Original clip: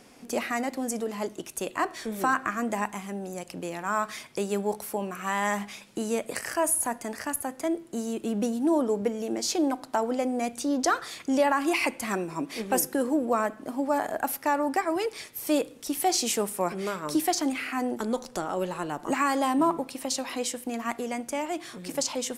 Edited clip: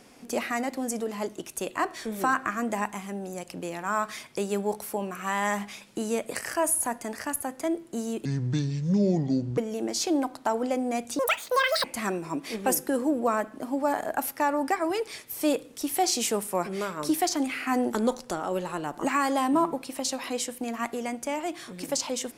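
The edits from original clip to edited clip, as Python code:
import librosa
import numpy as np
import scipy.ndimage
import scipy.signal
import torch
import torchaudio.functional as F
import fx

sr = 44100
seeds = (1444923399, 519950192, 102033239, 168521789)

y = fx.edit(x, sr, fx.speed_span(start_s=8.25, length_s=0.81, speed=0.61),
    fx.speed_span(start_s=10.67, length_s=1.23, speed=1.88),
    fx.clip_gain(start_s=17.73, length_s=0.48, db=3.5), tone=tone)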